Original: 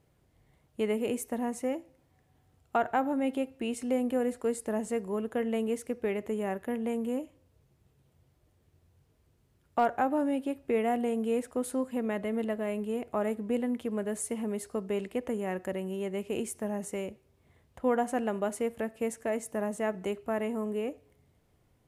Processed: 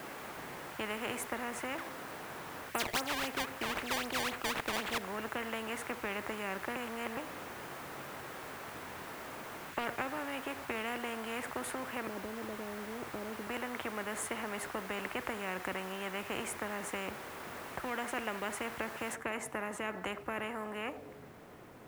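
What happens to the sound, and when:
1.78–4.98 decimation with a swept rate 19×, swing 160% 3.8 Hz
6.76–7.17 reverse
12.07–13.47 inverse Chebyshev low-pass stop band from 1100 Hz, stop band 50 dB
19.15 noise floor step -53 dB -67 dB
whole clip: three-band isolator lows -17 dB, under 170 Hz, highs -21 dB, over 2000 Hz; spectral compressor 4:1; gain -3.5 dB

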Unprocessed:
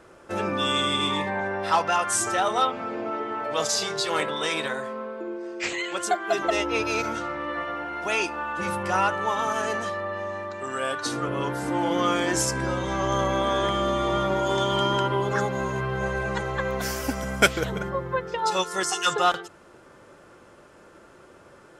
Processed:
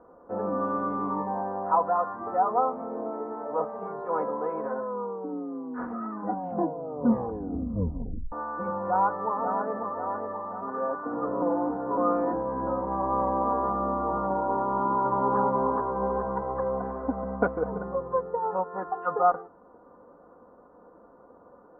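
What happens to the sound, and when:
4.74 tape stop 3.58 s
8.89–9.79 echo throw 0.54 s, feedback 60%, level -7 dB
11.42–11.97 reverse
14.63–15.38 echo throw 0.42 s, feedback 50%, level -1 dB
whole clip: steep low-pass 1100 Hz 36 dB/oct; tilt +2 dB/oct; comb 4.1 ms, depth 66%

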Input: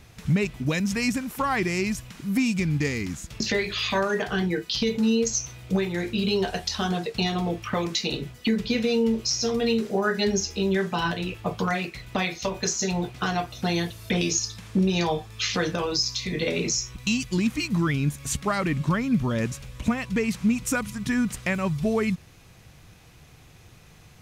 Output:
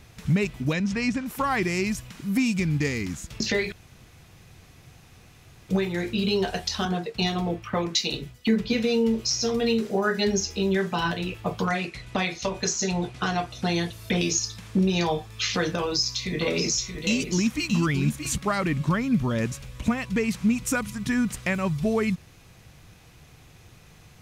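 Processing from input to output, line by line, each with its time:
0.73–1.26 air absorption 100 m
3.72–5.69 room tone
6.85–8.73 three-band expander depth 70%
11.65–13.93 LPF 11000 Hz 24 dB/oct
15.78–18.38 echo 0.627 s -7.5 dB

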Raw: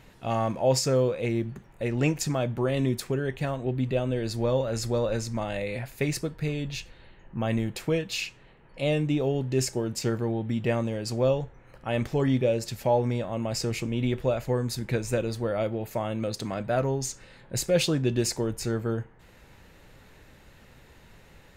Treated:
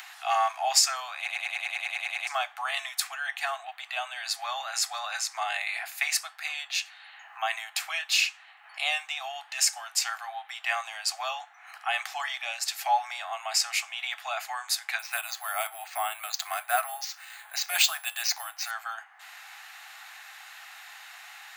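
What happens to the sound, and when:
1.17 stutter in place 0.10 s, 11 plays
14.99–18.71 careless resampling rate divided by 4×, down filtered, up hold
whole clip: steep high-pass 720 Hz 96 dB/oct; notch 940 Hz, Q 5.4; upward compressor, threshold -47 dBFS; gain +8 dB

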